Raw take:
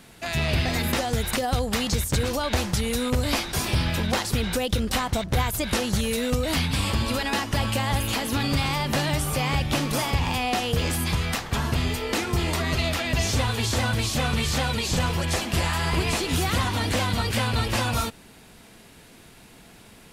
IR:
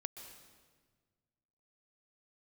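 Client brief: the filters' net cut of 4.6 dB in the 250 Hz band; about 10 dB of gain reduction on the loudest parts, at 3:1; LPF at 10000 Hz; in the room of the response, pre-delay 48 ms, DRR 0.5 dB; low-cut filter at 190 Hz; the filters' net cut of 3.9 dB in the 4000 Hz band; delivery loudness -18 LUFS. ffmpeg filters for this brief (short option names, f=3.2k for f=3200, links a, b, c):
-filter_complex "[0:a]highpass=190,lowpass=10k,equalizer=f=250:t=o:g=-3.5,equalizer=f=4k:t=o:g=-5,acompressor=threshold=-37dB:ratio=3,asplit=2[a][b];[1:a]atrim=start_sample=2205,adelay=48[c];[b][c]afir=irnorm=-1:irlink=0,volume=2dB[d];[a][d]amix=inputs=2:normalize=0,volume=16dB"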